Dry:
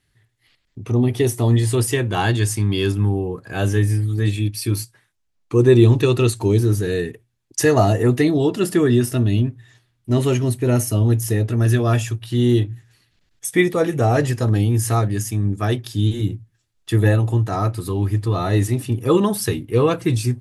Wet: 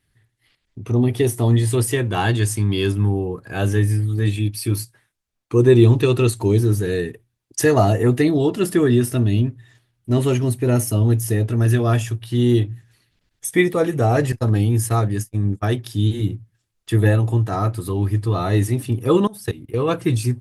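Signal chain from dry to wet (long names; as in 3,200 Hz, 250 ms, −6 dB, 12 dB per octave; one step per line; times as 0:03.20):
0:14.32–0:15.64: noise gate −22 dBFS, range −42 dB
0:19.27–0:19.89: output level in coarse steps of 19 dB
Opus 32 kbit/s 48,000 Hz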